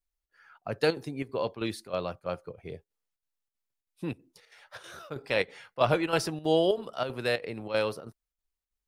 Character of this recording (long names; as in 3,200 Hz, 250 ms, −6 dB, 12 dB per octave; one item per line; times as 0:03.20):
chopped level 3.1 Hz, depth 60%, duty 80%